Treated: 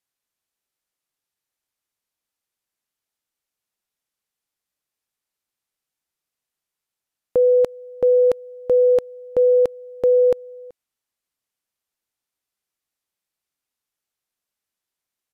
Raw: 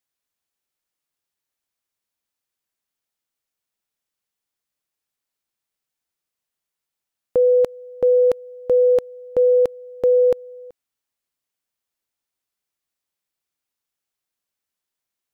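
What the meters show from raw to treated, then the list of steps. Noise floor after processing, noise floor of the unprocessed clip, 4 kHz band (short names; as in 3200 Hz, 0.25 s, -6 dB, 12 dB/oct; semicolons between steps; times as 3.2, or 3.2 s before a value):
under -85 dBFS, -85 dBFS, n/a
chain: downsampling 32000 Hz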